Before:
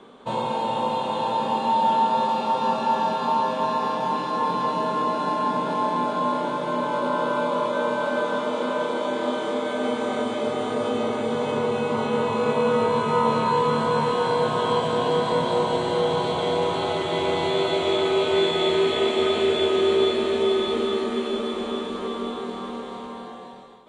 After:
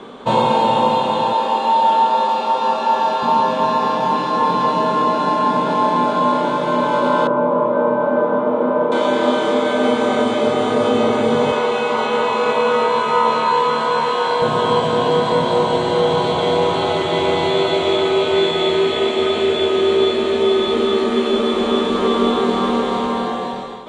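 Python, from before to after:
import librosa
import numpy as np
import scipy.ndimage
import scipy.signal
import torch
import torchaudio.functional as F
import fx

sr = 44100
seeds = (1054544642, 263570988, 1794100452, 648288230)

y = fx.highpass(x, sr, hz=330.0, slope=12, at=(1.33, 3.23))
y = fx.lowpass(y, sr, hz=1000.0, slope=12, at=(7.27, 8.92))
y = fx.weighting(y, sr, curve='A', at=(11.52, 14.42))
y = scipy.signal.sosfilt(scipy.signal.butter(2, 8300.0, 'lowpass', fs=sr, output='sos'), y)
y = fx.rider(y, sr, range_db=10, speed_s=2.0)
y = y * 10.0 ** (7.0 / 20.0)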